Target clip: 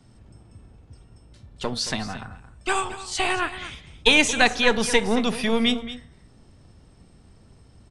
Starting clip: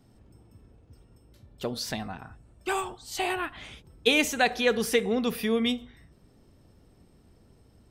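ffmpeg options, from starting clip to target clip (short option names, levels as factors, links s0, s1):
-filter_complex "[0:a]aecho=1:1:224:0.2,acrossover=split=220|990[s0][s1][s2];[s1]aeval=exprs='max(val(0),0)':c=same[s3];[s0][s3][s2]amix=inputs=3:normalize=0,aresample=22050,aresample=44100,volume=2.24"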